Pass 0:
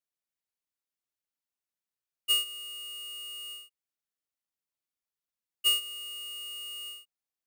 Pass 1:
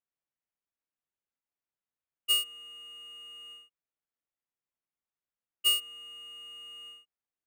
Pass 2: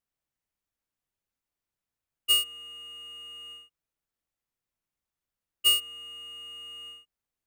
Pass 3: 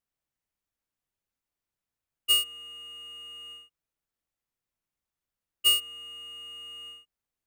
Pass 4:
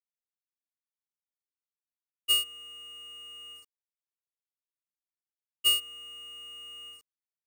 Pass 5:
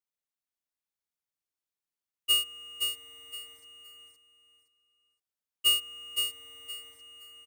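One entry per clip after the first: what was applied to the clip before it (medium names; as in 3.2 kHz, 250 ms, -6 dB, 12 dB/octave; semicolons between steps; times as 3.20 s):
local Wiener filter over 9 samples
bass shelf 130 Hz +12 dB; trim +3.5 dB
no audible change
small samples zeroed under -50.5 dBFS; trim -2 dB
feedback delay 517 ms, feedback 26%, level -5 dB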